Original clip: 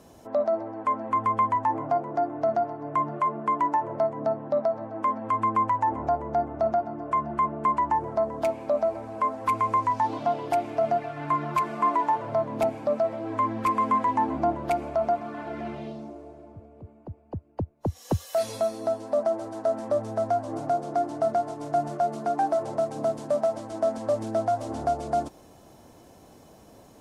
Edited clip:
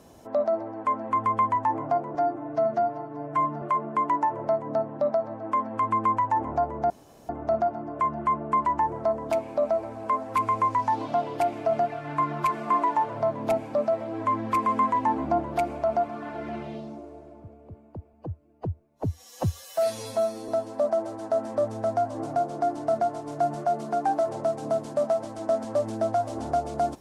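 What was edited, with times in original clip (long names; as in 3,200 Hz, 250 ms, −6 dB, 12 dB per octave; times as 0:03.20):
0:02.15–0:03.13: time-stretch 1.5×
0:06.41: splice in room tone 0.39 s
0:17.25–0:18.82: time-stretch 1.5×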